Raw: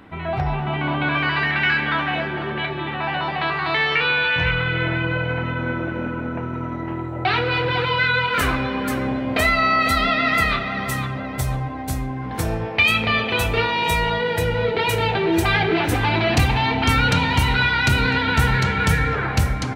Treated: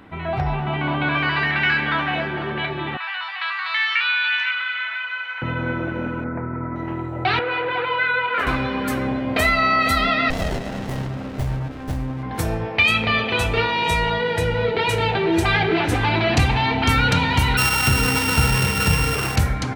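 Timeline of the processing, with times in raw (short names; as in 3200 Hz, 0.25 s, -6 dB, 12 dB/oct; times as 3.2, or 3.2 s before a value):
2.97–5.42 HPF 1200 Hz 24 dB/oct
6.24–6.76 Chebyshev low-pass 2200 Hz, order 5
7.39–8.47 three-band isolator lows -17 dB, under 320 Hz, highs -23 dB, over 3000 Hz
10.3–12.23 running maximum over 33 samples
12.82–16.76 LPF 10000 Hz
17.57–19.36 sample sorter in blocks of 16 samples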